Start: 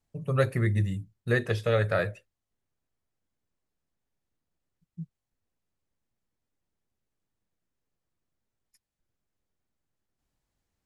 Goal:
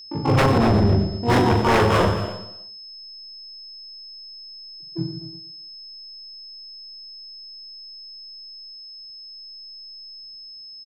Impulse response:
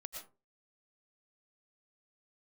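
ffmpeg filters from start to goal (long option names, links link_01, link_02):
-filter_complex "[0:a]lowpass=frequency=7900:width=0.5412,lowpass=frequency=7900:width=1.3066,equalizer=frequency=310:width=0.56:gain=6,bandreject=frequency=1100:width=26,acrossover=split=650|1800[link_01][link_02][link_03];[link_02]aeval=exprs='val(0)*sin(2*PI*150*n/s)':channel_layout=same[link_04];[link_03]acompressor=threshold=-48dB:ratio=6[link_05];[link_01][link_04][link_05]amix=inputs=3:normalize=0,asplit=3[link_06][link_07][link_08];[link_07]asetrate=35002,aresample=44100,atempo=1.25992,volume=-3dB[link_09];[link_08]asetrate=88200,aresample=44100,atempo=0.5,volume=-1dB[link_10];[link_06][link_09][link_10]amix=inputs=3:normalize=0,adynamicsmooth=sensitivity=6:basefreq=650,aecho=1:1:40|92|159.6|247.5|361.7:0.631|0.398|0.251|0.158|0.1,aeval=exprs='0.178*(abs(mod(val(0)/0.178+3,4)-2)-1)':channel_layout=same,aeval=exprs='val(0)+0.00708*sin(2*PI*5200*n/s)':channel_layout=same,asplit=2[link_11][link_12];[1:a]atrim=start_sample=2205,adelay=119[link_13];[link_12][link_13]afir=irnorm=-1:irlink=0,volume=-7.5dB[link_14];[link_11][link_14]amix=inputs=2:normalize=0,volume=4dB"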